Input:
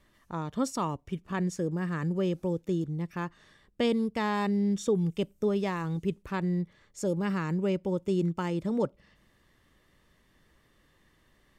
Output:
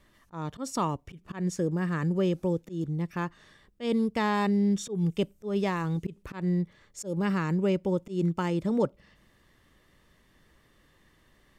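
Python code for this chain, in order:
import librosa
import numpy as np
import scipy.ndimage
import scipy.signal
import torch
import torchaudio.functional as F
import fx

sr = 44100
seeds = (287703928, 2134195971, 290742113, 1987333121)

y = fx.auto_swell(x, sr, attack_ms=159.0)
y = F.gain(torch.from_numpy(y), 2.5).numpy()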